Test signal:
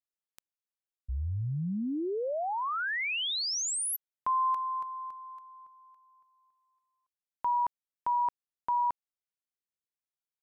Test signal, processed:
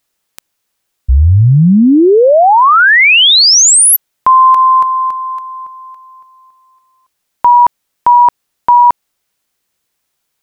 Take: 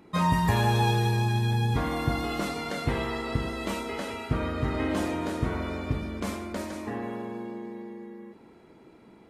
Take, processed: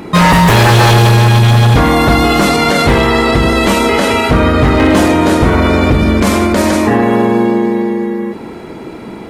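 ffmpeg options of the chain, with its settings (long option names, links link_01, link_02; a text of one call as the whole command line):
ffmpeg -i in.wav -af "aeval=exprs='0.0841*(abs(mod(val(0)/0.0841+3,4)-2)-1)':channel_layout=same,acontrast=36,alimiter=level_in=21.5dB:limit=-1dB:release=50:level=0:latency=1,volume=-1dB" out.wav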